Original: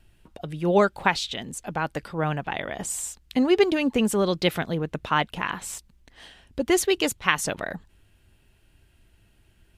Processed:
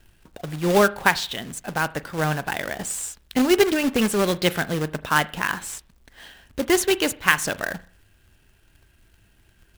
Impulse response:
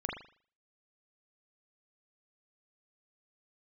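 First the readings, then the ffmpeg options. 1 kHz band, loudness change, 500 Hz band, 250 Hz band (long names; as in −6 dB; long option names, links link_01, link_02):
+2.0 dB, +2.5 dB, +1.5 dB, +1.5 dB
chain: -filter_complex "[0:a]equalizer=frequency=1600:width_type=o:width=0.28:gain=7,acrusher=bits=2:mode=log:mix=0:aa=0.000001,asplit=2[link_01][link_02];[1:a]atrim=start_sample=2205[link_03];[link_02][link_03]afir=irnorm=-1:irlink=0,volume=-17.5dB[link_04];[link_01][link_04]amix=inputs=2:normalize=0"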